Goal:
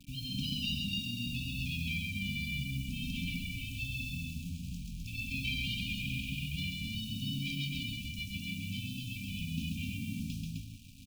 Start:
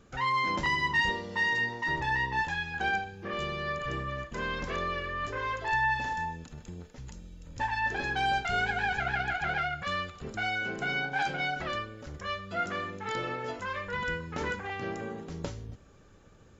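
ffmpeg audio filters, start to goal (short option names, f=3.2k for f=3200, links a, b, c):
-filter_complex "[0:a]aemphasis=mode=reproduction:type=cd,bandreject=f=153.2:t=h:w=4,bandreject=f=306.4:t=h:w=4,bandreject=f=459.6:t=h:w=4,bandreject=f=612.8:t=h:w=4,bandreject=f=766:t=h:w=4,bandreject=f=919.2:t=h:w=4,bandreject=f=1.0724k:t=h:w=4,bandreject=f=1.2256k:t=h:w=4,bandreject=f=1.3788k:t=h:w=4,bandreject=f=1.532k:t=h:w=4,atempo=1.5,lowpass=6.4k,acrossover=split=140[a][b];[a]alimiter=level_in=19dB:limit=-24dB:level=0:latency=1,volume=-19dB[c];[c][b]amix=inputs=2:normalize=0,acrusher=bits=8:mix=0:aa=0.000001,aecho=1:1:134.1|256.6:0.708|0.631,afftfilt=real='re*(1-between(b*sr/4096,290,2300))':imag='im*(1-between(b*sr/4096,290,2300))':win_size=4096:overlap=0.75,volume=2.5dB"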